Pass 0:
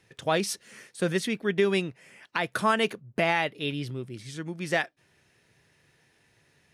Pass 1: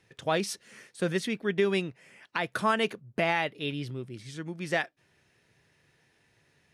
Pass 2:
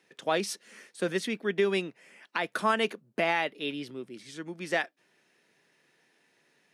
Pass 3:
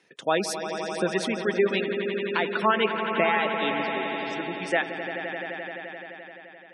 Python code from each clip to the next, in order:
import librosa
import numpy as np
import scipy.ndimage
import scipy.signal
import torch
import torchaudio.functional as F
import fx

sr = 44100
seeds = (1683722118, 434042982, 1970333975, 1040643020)

y1 = fx.high_shelf(x, sr, hz=8700.0, db=-5.0)
y1 = y1 * librosa.db_to_amplitude(-2.0)
y2 = scipy.signal.sosfilt(scipy.signal.butter(4, 200.0, 'highpass', fs=sr, output='sos'), y1)
y3 = fx.dereverb_blind(y2, sr, rt60_s=1.6)
y3 = fx.echo_swell(y3, sr, ms=86, loudest=5, wet_db=-11.0)
y3 = fx.spec_gate(y3, sr, threshold_db=-25, keep='strong')
y3 = y3 * librosa.db_to_amplitude(4.0)